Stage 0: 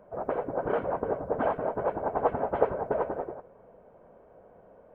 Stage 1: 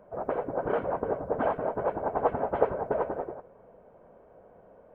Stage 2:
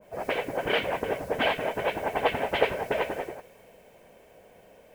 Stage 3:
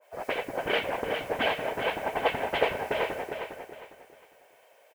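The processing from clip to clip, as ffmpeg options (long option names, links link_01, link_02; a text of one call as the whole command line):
ffmpeg -i in.wav -af anull out.wav
ffmpeg -i in.wav -af "aexciter=amount=12.3:drive=5.3:freq=2000,adynamicequalizer=threshold=0.00794:dfrequency=1500:dqfactor=0.7:tfrequency=1500:tqfactor=0.7:attack=5:release=100:ratio=0.375:range=3:mode=boostabove:tftype=highshelf" out.wav
ffmpeg -i in.wav -filter_complex "[0:a]acrossover=split=540[link_01][link_02];[link_01]aeval=exprs='sgn(val(0))*max(abs(val(0))-0.00596,0)':channel_layout=same[link_03];[link_03][link_02]amix=inputs=2:normalize=0,aecho=1:1:406|812|1218|1624:0.447|0.134|0.0402|0.0121,volume=-1.5dB" out.wav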